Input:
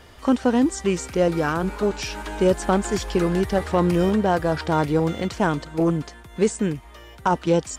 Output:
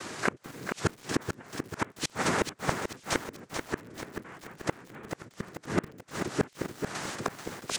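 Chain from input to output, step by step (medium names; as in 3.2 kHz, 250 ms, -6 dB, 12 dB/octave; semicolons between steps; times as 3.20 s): noise-vocoded speech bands 3; inverted gate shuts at -18 dBFS, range -36 dB; in parallel at +0.5 dB: compression, threshold -43 dBFS, peak gain reduction 16.5 dB; on the sum: bit-crushed delay 436 ms, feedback 55%, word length 8-bit, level -6 dB; trim +3.5 dB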